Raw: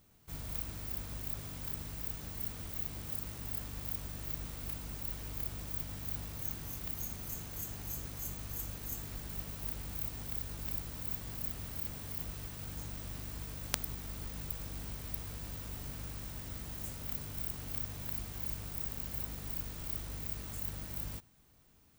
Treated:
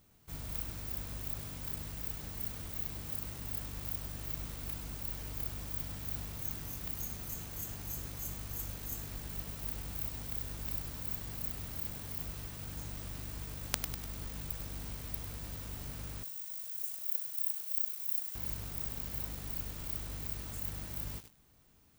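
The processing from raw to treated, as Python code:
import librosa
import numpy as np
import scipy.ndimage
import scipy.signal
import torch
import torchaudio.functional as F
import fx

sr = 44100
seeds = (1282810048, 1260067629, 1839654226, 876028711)

y = fx.differentiator(x, sr, at=(16.23, 18.35))
y = fx.echo_crushed(y, sr, ms=99, feedback_pct=55, bits=7, wet_db=-9)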